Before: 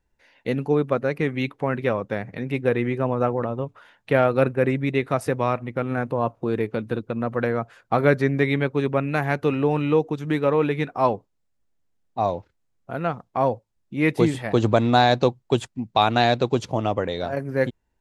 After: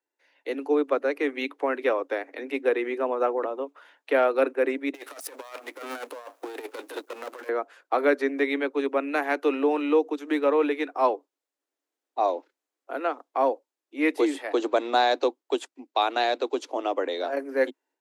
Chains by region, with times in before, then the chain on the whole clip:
0:04.94–0:07.49: gain on one half-wave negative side −12 dB + RIAA equalisation recording + compressor whose output falls as the input rises −35 dBFS, ratio −0.5
whole clip: Butterworth high-pass 270 Hz 96 dB per octave; automatic gain control gain up to 8.5 dB; level −8.5 dB

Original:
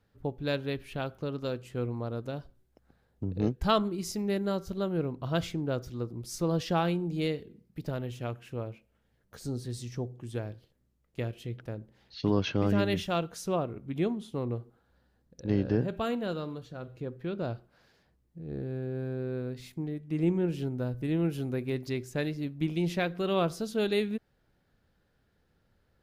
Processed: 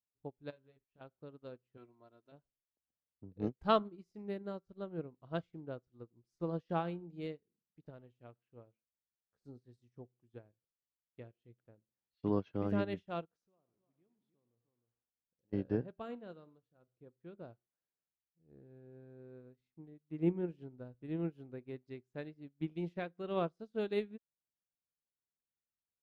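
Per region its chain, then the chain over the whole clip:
0:00.50–0:01.01: downward expander −39 dBFS + double-tracking delay 23 ms −2.5 dB + downward compressor 4 to 1, threshold −36 dBFS
0:01.77–0:02.32: spectral tilt +2.5 dB per octave + comb filter 3 ms, depth 70%
0:13.25–0:15.53: single-tap delay 307 ms −13.5 dB + downward compressor 3 to 1, threshold −46 dBFS + feedback echo at a low word length 102 ms, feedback 55%, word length 9 bits, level −9 dB
whole clip: low-pass filter 1,600 Hz 6 dB per octave; low-shelf EQ 97 Hz −8.5 dB; expander for the loud parts 2.5 to 1, over −46 dBFS; level −1 dB

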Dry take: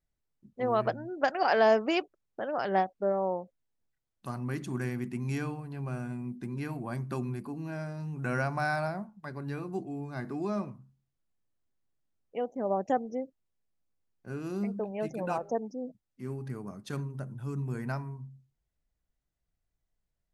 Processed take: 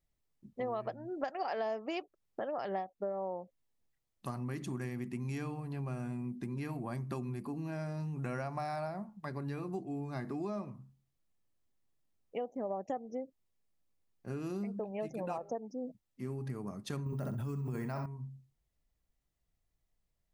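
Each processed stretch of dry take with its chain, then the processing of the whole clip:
0:17.06–0:18.06: bad sample-rate conversion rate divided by 2×, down none, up hold + flutter between parallel walls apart 10.9 metres, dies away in 0.42 s + envelope flattener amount 100%
whole clip: notch filter 1,500 Hz, Q 10; dynamic equaliser 660 Hz, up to +3 dB, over −35 dBFS, Q 1.2; downward compressor 5 to 1, threshold −37 dBFS; level +1.5 dB

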